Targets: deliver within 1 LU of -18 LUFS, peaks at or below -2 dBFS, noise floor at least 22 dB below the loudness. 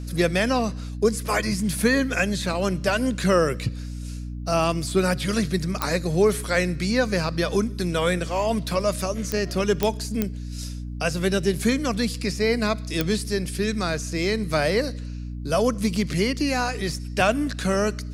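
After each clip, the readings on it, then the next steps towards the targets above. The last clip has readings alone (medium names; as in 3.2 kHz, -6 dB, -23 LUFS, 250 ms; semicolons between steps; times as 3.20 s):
clicks found 5; hum 60 Hz; highest harmonic 300 Hz; hum level -30 dBFS; loudness -24.0 LUFS; peak level -5.5 dBFS; loudness target -18.0 LUFS
-> de-click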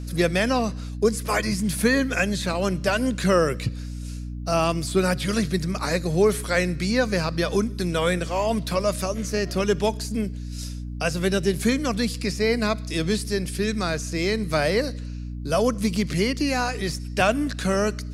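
clicks found 0; hum 60 Hz; highest harmonic 300 Hz; hum level -30 dBFS
-> de-hum 60 Hz, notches 5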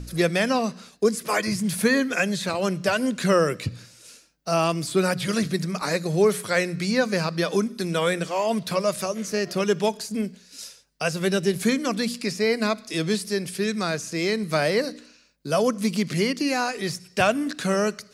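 hum not found; loudness -24.5 LUFS; peak level -5.5 dBFS; loudness target -18.0 LUFS
-> trim +6.5 dB; peak limiter -2 dBFS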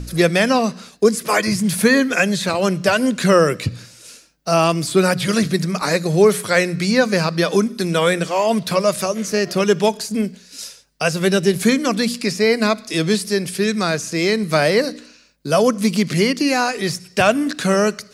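loudness -18.0 LUFS; peak level -2.0 dBFS; noise floor -48 dBFS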